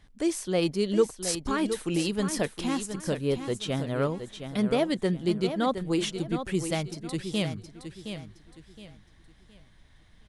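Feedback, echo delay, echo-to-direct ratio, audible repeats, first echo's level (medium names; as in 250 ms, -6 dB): 31%, 717 ms, -8.5 dB, 3, -9.0 dB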